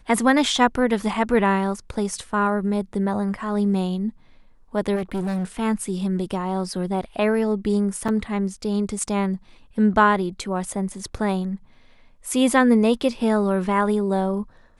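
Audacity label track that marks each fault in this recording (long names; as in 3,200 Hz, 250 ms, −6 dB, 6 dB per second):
4.950000	5.450000	clipping −22 dBFS
8.080000	8.090000	drop-out 5.7 ms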